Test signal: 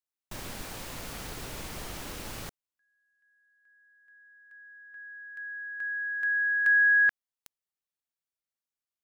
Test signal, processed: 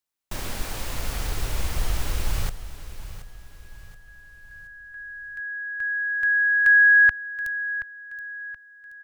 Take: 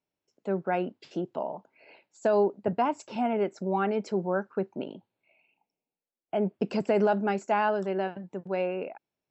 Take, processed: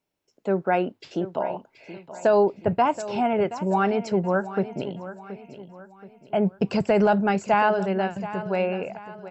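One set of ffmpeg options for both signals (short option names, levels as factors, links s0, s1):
-af "aecho=1:1:726|1452|2178|2904:0.2|0.0818|0.0335|0.0138,asubboost=boost=10.5:cutoff=86,volume=2.11"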